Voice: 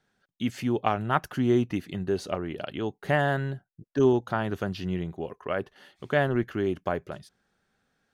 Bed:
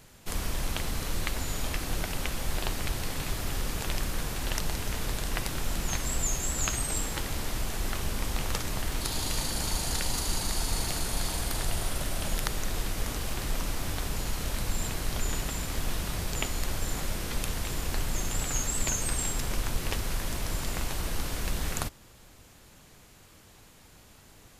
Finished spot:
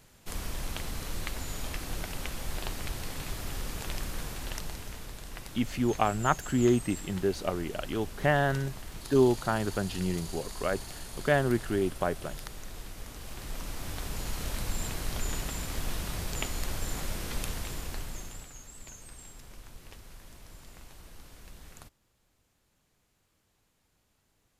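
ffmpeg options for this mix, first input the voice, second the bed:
ffmpeg -i stem1.wav -i stem2.wav -filter_complex "[0:a]adelay=5150,volume=-1dB[link_01];[1:a]volume=4.5dB,afade=type=out:start_time=4.24:duration=0.86:silence=0.446684,afade=type=in:start_time=13.12:duration=1.3:silence=0.354813,afade=type=out:start_time=17.43:duration=1.1:silence=0.158489[link_02];[link_01][link_02]amix=inputs=2:normalize=0" out.wav

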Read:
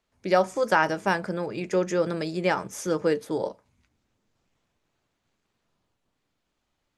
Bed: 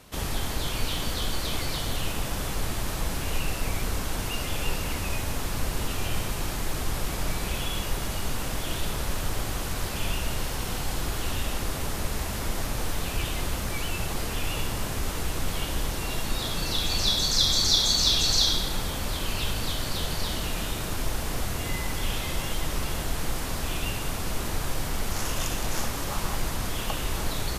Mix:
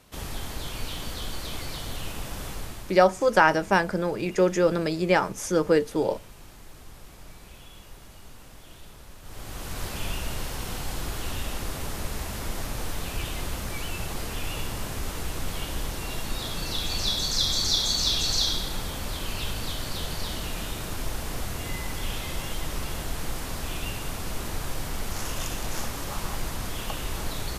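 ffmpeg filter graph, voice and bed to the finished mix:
ffmpeg -i stem1.wav -i stem2.wav -filter_complex "[0:a]adelay=2650,volume=3dB[link_01];[1:a]volume=10dB,afade=type=out:start_time=2.49:duration=0.54:silence=0.237137,afade=type=in:start_time=9.22:duration=0.62:silence=0.177828[link_02];[link_01][link_02]amix=inputs=2:normalize=0" out.wav

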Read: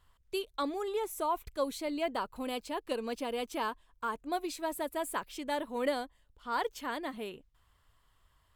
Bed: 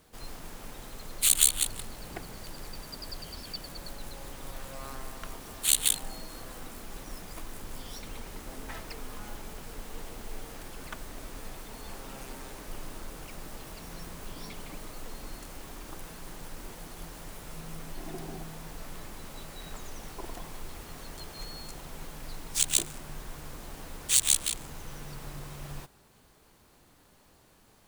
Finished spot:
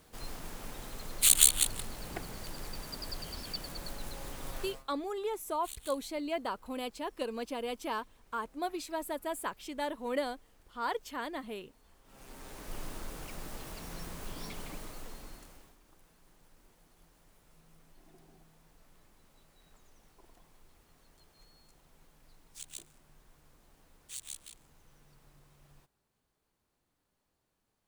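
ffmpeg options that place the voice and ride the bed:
ffmpeg -i stem1.wav -i stem2.wav -filter_complex "[0:a]adelay=4300,volume=-1.5dB[link_01];[1:a]volume=22.5dB,afade=type=out:start_time=4.62:duration=0.22:silence=0.0707946,afade=type=in:start_time=12.04:duration=0.76:silence=0.0749894,afade=type=out:start_time=14.64:duration=1.13:silence=0.1[link_02];[link_01][link_02]amix=inputs=2:normalize=0" out.wav

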